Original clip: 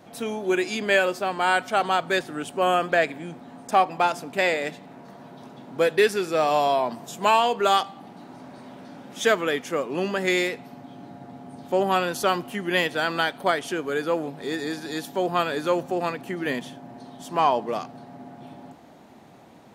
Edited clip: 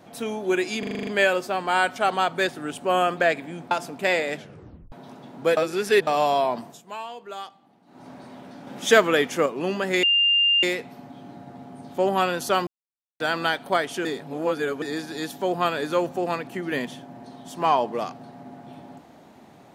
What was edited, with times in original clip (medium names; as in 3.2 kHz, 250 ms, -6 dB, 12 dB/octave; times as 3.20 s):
0.79 s: stutter 0.04 s, 8 plays
3.43–4.05 s: delete
4.68 s: tape stop 0.58 s
5.91–6.41 s: reverse
6.94–8.42 s: dip -16 dB, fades 0.22 s
9.01–9.80 s: gain +4.5 dB
10.37 s: add tone 2.8 kHz -16 dBFS 0.60 s
12.41–12.94 s: mute
13.79–14.56 s: reverse